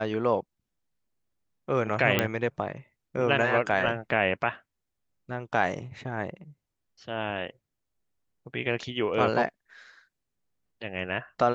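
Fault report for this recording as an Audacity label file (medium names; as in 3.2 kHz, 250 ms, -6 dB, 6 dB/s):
2.190000	2.190000	pop -8 dBFS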